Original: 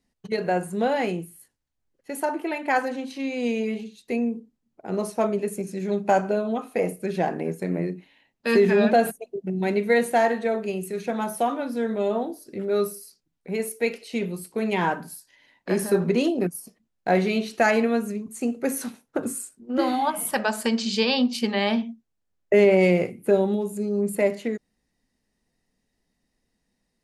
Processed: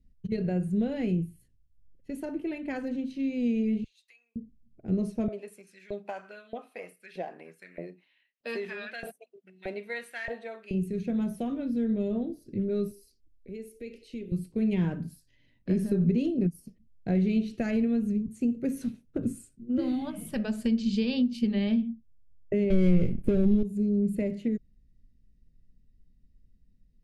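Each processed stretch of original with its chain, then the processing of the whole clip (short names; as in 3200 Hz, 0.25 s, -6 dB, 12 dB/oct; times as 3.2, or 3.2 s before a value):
3.84–4.36 compressor 12:1, threshold -31 dBFS + HPF 1200 Hz 24 dB/oct
5.28–10.71 notch 6700 Hz, Q 8.2 + LFO high-pass saw up 1.6 Hz 620–1900 Hz
12.91–14.32 fixed phaser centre 390 Hz, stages 4 + compressor 2:1, threshold -37 dBFS
22.7–23.63 half-wave gain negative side -3 dB + sample leveller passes 3 + mismatched tape noise reduction decoder only
whole clip: tilt -4 dB/oct; compressor 3:1, threshold -16 dBFS; EQ curve 110 Hz 0 dB, 610 Hz -14 dB, 860 Hz -23 dB, 2700 Hz -4 dB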